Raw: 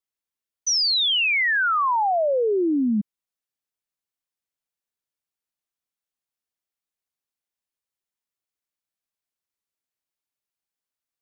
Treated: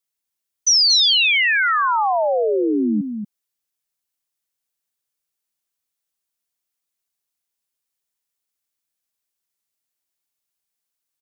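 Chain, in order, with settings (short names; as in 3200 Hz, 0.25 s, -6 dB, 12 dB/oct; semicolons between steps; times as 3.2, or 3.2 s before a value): high shelf 4000 Hz +8 dB; echo 0.234 s -7.5 dB; gain +1.5 dB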